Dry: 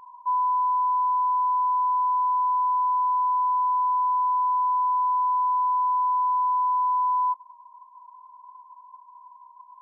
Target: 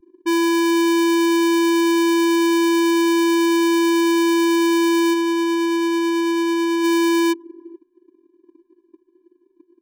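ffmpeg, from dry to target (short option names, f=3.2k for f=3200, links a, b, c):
-filter_complex "[0:a]asplit=2[a][b];[b]asoftclip=type=tanh:threshold=-36.5dB,volume=-7.5dB[c];[a][c]amix=inputs=2:normalize=0,asplit=3[d][e][f];[d]afade=t=out:st=5.13:d=0.02[g];[e]asplit=2[h][i];[i]highpass=f=720:p=1,volume=9dB,asoftclip=type=tanh:threshold=-19dB[j];[h][j]amix=inputs=2:normalize=0,lowpass=f=1k:p=1,volume=-6dB,afade=t=in:st=5.13:d=0.02,afade=t=out:st=6.83:d=0.02[k];[f]afade=t=in:st=6.83:d=0.02[l];[g][k][l]amix=inputs=3:normalize=0,acrusher=samples=33:mix=1:aa=0.000001,asplit=2[m][n];[n]adelay=437.3,volume=-17dB,highshelf=f=4k:g=-9.84[o];[m][o]amix=inputs=2:normalize=0,anlmdn=63.1,volume=5dB"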